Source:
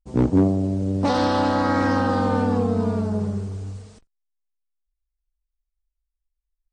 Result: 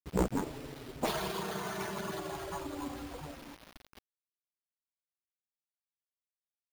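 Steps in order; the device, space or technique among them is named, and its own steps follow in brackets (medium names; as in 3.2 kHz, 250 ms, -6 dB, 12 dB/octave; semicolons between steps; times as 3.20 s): harmonic-percussive separation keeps percussive; 1.31–2.37 s: high-pass 110 Hz 12 dB/octave; early 8-bit sampler (sample-rate reducer 7.8 kHz, jitter 0%; bit crusher 8-bit); trim -1.5 dB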